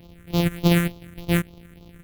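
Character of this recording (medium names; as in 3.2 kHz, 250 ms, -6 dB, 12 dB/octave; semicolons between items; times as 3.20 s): a buzz of ramps at a fixed pitch in blocks of 256 samples; phasing stages 4, 3.4 Hz, lowest notch 770–1700 Hz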